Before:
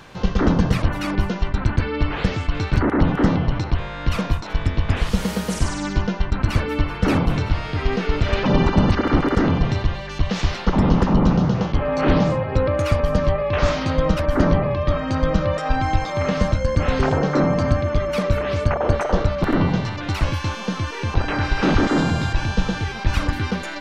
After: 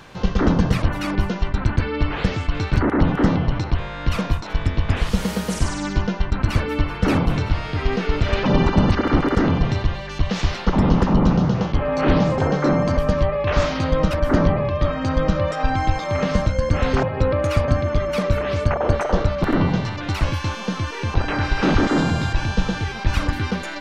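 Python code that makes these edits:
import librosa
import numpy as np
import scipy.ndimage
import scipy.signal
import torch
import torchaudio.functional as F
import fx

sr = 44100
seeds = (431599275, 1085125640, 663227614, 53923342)

y = fx.edit(x, sr, fx.swap(start_s=12.38, length_s=0.65, other_s=17.09, other_length_s=0.59), tone=tone)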